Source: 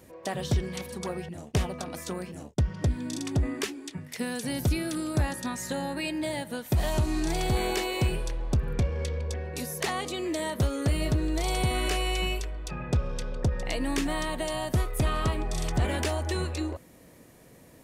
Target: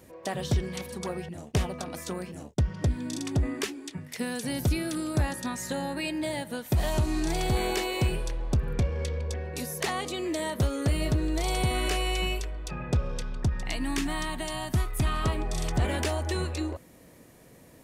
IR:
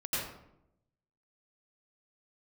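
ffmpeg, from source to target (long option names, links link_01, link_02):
-filter_complex "[0:a]asettb=1/sr,asplit=3[link_01][link_02][link_03];[link_01]atrim=end=13.214[link_04];[link_02]atrim=start=13.21:end=15.24,asetpts=PTS-STARTPTS,afade=type=in:duration=0.004:curve=qsin,afade=type=out:start_time=2.026:duration=0.004:curve=qsin,equalizer=frequency=510:width_type=o:width=0.46:gain=-14.5[link_05];[link_03]atrim=start=15.236[link_06];[link_04][link_05]acrossfade=duration=0.004:curve1=hsin:curve2=qsin[link_07];[link_07][link_06]acrossfade=duration=0.004:curve1=qsin:curve2=hsin"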